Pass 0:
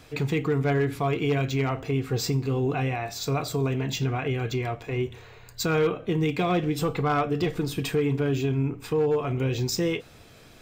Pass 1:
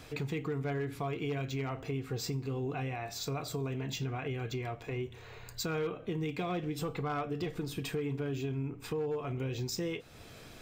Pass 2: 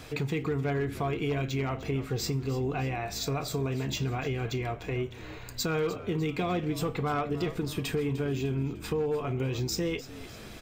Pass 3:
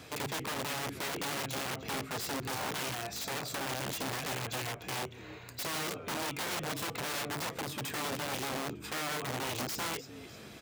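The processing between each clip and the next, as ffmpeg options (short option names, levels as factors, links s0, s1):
-af "acompressor=threshold=0.00891:ratio=2"
-filter_complex "[0:a]asplit=5[s0][s1][s2][s3][s4];[s1]adelay=301,afreqshift=-63,volume=0.168[s5];[s2]adelay=602,afreqshift=-126,volume=0.0785[s6];[s3]adelay=903,afreqshift=-189,volume=0.0372[s7];[s4]adelay=1204,afreqshift=-252,volume=0.0174[s8];[s0][s5][s6][s7][s8]amix=inputs=5:normalize=0,volume=1.78"
-af "aeval=exprs='(mod(23.7*val(0)+1,2)-1)/23.7':c=same,highpass=100,volume=0.668"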